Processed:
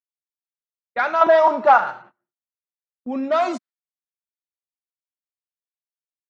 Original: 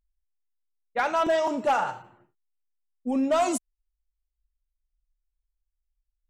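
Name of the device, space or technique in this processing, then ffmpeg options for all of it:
kitchen radio: -filter_complex "[0:a]asettb=1/sr,asplit=3[s0][s1][s2];[s0]atrim=end=1.214[s3];[s1]atrim=start=1.21:end=1.78,asetpts=PTS-STARTPTS,afade=t=in:d=0.004:c=qsin,afade=t=out:st=0.566:d=0.004:c=qsin,equalizer=f=920:t=o:w=1.2:g=11[s4];[s2]atrim=start=1.776[s5];[s3][s4]acrossfade=d=0.004:c1=hsin:c2=qsin[s6];[s6][s5]acrossfade=d=0.004:c1=qsin:c2=hsin,highpass=96,highpass=230,equalizer=f=290:t=q:w=4:g=-6,equalizer=f=470:t=q:w=4:g=-7,equalizer=f=860:t=q:w=4:g=-5,equalizer=f=1400:t=q:w=4:g=3,equalizer=f=2900:t=q:w=4:g=-8,lowpass=f=4400:w=0.5412,lowpass=f=4400:w=1.3066,agate=range=0.0708:threshold=0.00316:ratio=16:detection=peak,volume=1.88"

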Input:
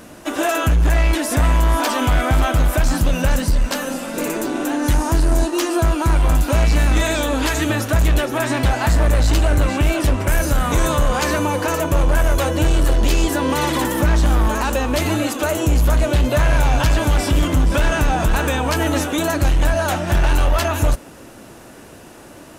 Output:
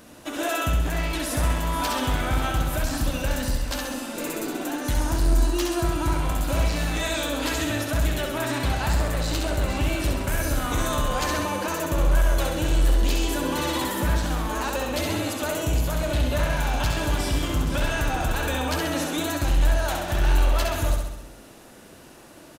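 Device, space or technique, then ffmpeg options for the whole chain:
presence and air boost: -af "equalizer=f=3900:t=o:w=0.9:g=4,highshelf=f=12000:g=5,aecho=1:1:66|132|198|264|330|396|462|528:0.631|0.372|0.22|0.13|0.0765|0.0451|0.0266|0.0157,volume=0.355"

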